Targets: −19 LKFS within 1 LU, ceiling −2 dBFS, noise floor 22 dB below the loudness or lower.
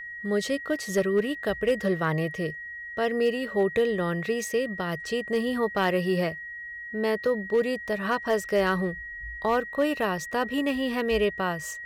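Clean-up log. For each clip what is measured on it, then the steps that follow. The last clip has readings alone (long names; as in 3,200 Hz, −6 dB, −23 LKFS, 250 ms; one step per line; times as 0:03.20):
share of clipped samples 0.2%; peaks flattened at −16.0 dBFS; interfering tone 1,900 Hz; level of the tone −36 dBFS; integrated loudness −27.0 LKFS; sample peak −16.0 dBFS; target loudness −19.0 LKFS
→ clipped peaks rebuilt −16 dBFS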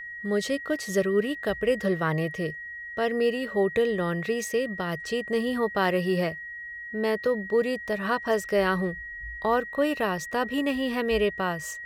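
share of clipped samples 0.0%; interfering tone 1,900 Hz; level of the tone −36 dBFS
→ notch filter 1,900 Hz, Q 30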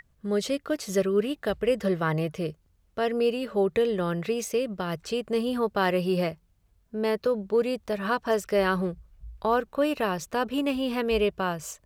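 interfering tone none found; integrated loudness −27.5 LKFS; sample peak −12.0 dBFS; target loudness −19.0 LKFS
→ level +8.5 dB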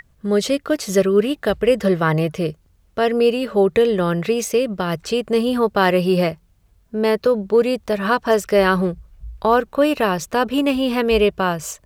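integrated loudness −19.0 LKFS; sample peak −3.5 dBFS; background noise floor −58 dBFS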